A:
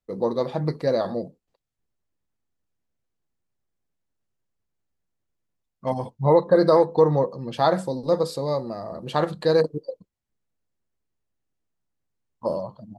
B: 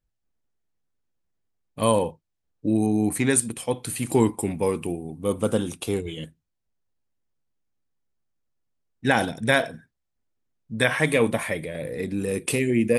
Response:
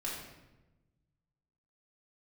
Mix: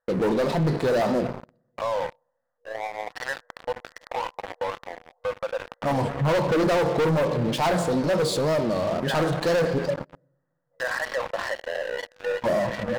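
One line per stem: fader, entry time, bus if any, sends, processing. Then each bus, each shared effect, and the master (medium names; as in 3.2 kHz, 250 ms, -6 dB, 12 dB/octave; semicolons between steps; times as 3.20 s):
-3.5 dB, 0.00 s, send -14 dB, wow and flutter 150 cents
-18.5 dB, 0.00 s, send -15 dB, FFT band-pass 480–2000 Hz; level flattener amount 50%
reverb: on, RT60 1.1 s, pre-delay 3 ms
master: waveshaping leveller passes 5; peak limiter -18.5 dBFS, peak gain reduction 11.5 dB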